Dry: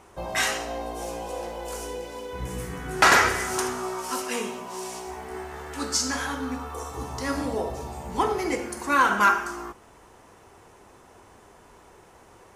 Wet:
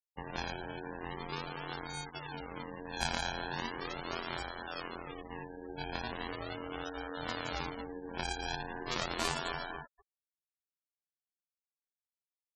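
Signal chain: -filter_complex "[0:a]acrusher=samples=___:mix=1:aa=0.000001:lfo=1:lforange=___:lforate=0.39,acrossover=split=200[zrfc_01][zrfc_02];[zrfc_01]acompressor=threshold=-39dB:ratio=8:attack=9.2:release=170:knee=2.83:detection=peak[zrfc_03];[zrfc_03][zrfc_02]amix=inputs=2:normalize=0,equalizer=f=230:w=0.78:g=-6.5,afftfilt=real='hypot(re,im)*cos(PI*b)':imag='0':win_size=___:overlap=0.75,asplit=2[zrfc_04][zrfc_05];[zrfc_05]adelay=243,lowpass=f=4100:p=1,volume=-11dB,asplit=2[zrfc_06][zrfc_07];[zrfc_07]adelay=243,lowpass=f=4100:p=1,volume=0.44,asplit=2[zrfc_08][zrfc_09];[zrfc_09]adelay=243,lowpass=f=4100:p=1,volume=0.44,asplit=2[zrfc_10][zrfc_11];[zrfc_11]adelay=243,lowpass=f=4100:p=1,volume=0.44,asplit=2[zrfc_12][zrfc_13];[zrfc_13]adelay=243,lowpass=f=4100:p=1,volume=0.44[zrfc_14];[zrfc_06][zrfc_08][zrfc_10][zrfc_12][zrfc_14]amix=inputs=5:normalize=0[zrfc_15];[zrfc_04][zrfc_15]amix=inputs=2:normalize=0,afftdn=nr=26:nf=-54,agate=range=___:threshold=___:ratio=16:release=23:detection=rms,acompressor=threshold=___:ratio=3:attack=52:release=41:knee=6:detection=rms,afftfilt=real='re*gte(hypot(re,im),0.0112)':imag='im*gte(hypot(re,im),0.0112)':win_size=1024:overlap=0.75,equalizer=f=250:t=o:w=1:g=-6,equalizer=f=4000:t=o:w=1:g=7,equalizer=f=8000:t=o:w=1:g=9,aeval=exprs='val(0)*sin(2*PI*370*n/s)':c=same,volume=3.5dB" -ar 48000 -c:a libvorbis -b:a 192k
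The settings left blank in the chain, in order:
37, 37, 2048, -22dB, -48dB, -40dB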